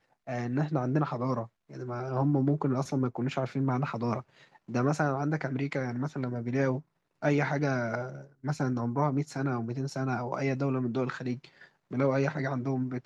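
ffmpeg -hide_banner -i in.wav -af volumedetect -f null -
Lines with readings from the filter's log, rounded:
mean_volume: -30.4 dB
max_volume: -13.8 dB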